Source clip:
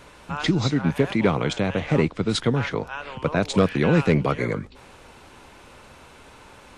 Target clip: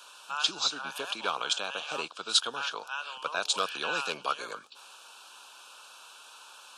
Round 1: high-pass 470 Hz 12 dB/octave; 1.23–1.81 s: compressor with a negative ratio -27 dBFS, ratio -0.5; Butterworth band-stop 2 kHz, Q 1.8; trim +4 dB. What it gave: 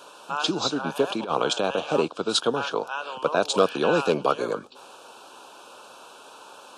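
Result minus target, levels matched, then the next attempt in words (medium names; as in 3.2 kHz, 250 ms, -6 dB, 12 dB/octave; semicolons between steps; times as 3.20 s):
500 Hz band +10.5 dB
high-pass 1.5 kHz 12 dB/octave; 1.23–1.81 s: compressor with a negative ratio -27 dBFS, ratio -0.5; Butterworth band-stop 2 kHz, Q 1.8; trim +4 dB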